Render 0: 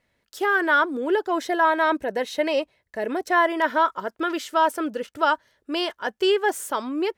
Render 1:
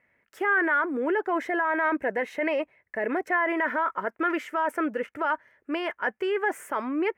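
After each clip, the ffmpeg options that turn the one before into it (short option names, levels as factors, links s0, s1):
-af "alimiter=limit=0.106:level=0:latency=1:release=12,highpass=f=130:p=1,highshelf=f=2900:t=q:w=3:g=-11"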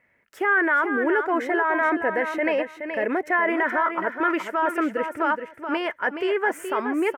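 -af "aecho=1:1:423|846|1269:0.398|0.0637|0.0102,volume=1.41"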